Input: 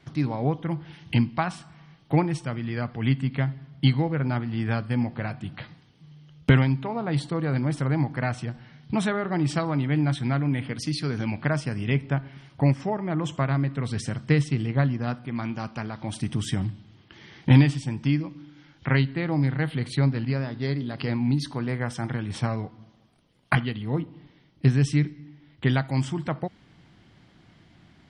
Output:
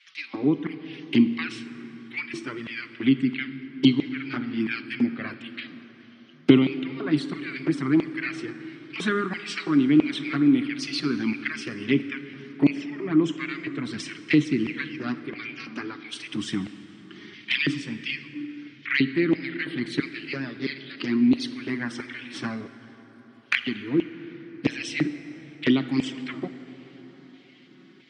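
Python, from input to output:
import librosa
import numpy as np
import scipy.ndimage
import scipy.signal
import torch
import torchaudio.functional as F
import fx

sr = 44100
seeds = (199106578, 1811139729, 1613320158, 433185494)

y = fx.band_shelf(x, sr, hz=650.0, db=-13.0, octaves=1.2)
y = fx.filter_lfo_highpass(y, sr, shape='square', hz=1.5, low_hz=300.0, high_hz=2400.0, q=2.3)
y = fx.env_flanger(y, sr, rest_ms=5.8, full_db=-20.0)
y = fx.bandpass_edges(y, sr, low_hz=100.0, high_hz=6000.0)
y = fx.rev_plate(y, sr, seeds[0], rt60_s=4.7, hf_ratio=0.45, predelay_ms=0, drr_db=11.5)
y = y * 10.0 ** (5.0 / 20.0)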